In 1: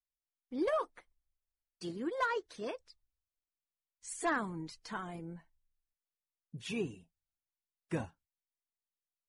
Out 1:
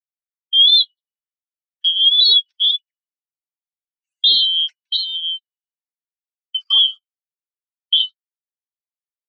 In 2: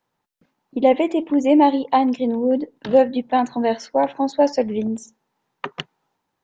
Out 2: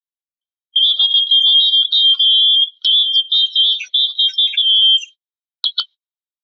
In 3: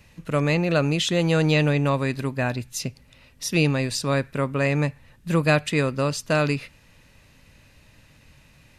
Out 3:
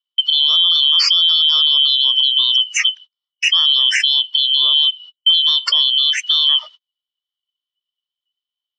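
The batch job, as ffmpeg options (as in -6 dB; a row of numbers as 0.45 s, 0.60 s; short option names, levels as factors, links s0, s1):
-af "afftfilt=real='real(if(lt(b,272),68*(eq(floor(b/68),0)*1+eq(floor(b/68),1)*3+eq(floor(b/68),2)*0+eq(floor(b/68),3)*2)+mod(b,68),b),0)':imag='imag(if(lt(b,272),68*(eq(floor(b/68),0)*1+eq(floor(b/68),1)*3+eq(floor(b/68),2)*0+eq(floor(b/68),3)*2)+mod(b,68),b),0)':win_size=2048:overlap=0.75,highpass=180,afftdn=nr=19:nf=-32,lowpass=f=3700:w=0.5412,lowpass=f=3700:w=1.3066,aderivative,agate=range=0.0126:threshold=0.00158:ratio=16:detection=peak,highshelf=f=2300:g=11.5,acompressor=threshold=0.0398:ratio=12,alimiter=level_in=31.6:limit=0.891:release=50:level=0:latency=1,volume=0.596"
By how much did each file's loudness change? +24.5 LU, +8.5 LU, +11.0 LU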